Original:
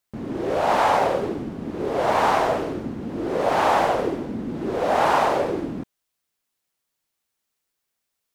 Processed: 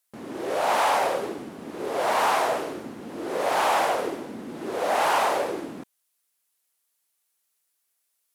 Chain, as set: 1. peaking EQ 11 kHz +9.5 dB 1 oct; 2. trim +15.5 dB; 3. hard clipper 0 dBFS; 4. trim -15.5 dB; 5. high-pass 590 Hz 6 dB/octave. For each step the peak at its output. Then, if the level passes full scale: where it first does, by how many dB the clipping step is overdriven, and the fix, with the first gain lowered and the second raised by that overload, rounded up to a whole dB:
-6.0 dBFS, +9.5 dBFS, 0.0 dBFS, -15.5 dBFS, -12.0 dBFS; step 2, 9.5 dB; step 2 +5.5 dB, step 4 -5.5 dB

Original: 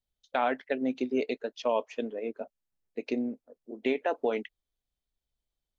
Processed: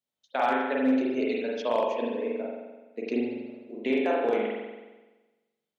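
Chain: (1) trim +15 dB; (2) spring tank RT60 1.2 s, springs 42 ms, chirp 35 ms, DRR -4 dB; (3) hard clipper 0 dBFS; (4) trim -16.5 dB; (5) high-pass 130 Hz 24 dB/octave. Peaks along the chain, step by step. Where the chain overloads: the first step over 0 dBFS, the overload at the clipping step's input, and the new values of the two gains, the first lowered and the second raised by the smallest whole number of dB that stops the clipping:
+1.0 dBFS, +3.5 dBFS, 0.0 dBFS, -16.5 dBFS, -13.0 dBFS; step 1, 3.5 dB; step 1 +11 dB, step 4 -12.5 dB

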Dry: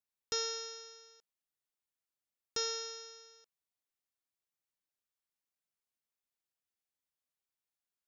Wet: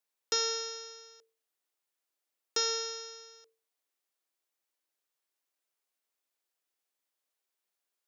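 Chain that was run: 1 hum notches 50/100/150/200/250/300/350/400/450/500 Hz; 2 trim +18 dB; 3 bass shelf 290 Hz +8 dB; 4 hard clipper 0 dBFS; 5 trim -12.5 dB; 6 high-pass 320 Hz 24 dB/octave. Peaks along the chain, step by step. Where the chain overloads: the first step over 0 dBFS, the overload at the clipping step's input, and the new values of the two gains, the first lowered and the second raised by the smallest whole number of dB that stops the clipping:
-21.5 dBFS, -3.5 dBFS, -3.0 dBFS, -3.0 dBFS, -15.5 dBFS, -17.5 dBFS; nothing clips

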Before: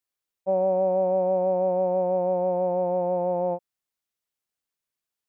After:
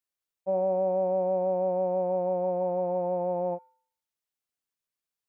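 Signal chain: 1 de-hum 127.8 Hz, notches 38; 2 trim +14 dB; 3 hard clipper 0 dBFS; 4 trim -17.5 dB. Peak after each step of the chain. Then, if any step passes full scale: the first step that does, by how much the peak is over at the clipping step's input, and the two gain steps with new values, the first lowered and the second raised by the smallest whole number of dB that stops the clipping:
-15.5 dBFS, -1.5 dBFS, -1.5 dBFS, -19.0 dBFS; nothing clips

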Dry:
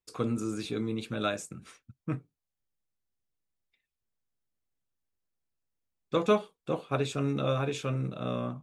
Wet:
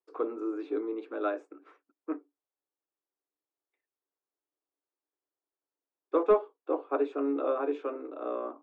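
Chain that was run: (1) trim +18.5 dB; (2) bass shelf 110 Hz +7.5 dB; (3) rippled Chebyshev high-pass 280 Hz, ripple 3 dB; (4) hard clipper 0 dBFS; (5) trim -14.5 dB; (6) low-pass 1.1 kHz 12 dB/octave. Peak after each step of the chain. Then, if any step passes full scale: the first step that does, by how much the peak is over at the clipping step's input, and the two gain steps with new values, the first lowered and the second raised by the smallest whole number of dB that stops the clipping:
+5.5 dBFS, +6.0 dBFS, +5.5 dBFS, 0.0 dBFS, -14.5 dBFS, -14.0 dBFS; step 1, 5.5 dB; step 1 +12.5 dB, step 5 -8.5 dB

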